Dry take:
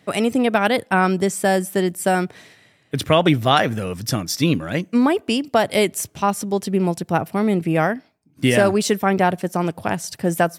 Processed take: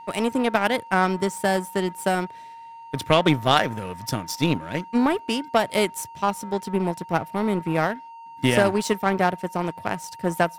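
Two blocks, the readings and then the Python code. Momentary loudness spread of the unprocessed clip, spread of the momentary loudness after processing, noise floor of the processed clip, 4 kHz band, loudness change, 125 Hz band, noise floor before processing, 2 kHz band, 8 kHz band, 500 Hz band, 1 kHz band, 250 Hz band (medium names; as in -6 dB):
7 LU, 10 LU, -42 dBFS, -3.0 dB, -4.0 dB, -5.0 dB, -58 dBFS, -3.0 dB, -6.5 dB, -4.0 dB, -2.5 dB, -5.0 dB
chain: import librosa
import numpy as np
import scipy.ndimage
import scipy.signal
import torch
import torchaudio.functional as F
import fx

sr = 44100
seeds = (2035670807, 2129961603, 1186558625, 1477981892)

y = x + 10.0 ** (-28.0 / 20.0) * np.sin(2.0 * np.pi * 920.0 * np.arange(len(x)) / sr)
y = fx.power_curve(y, sr, exponent=1.4)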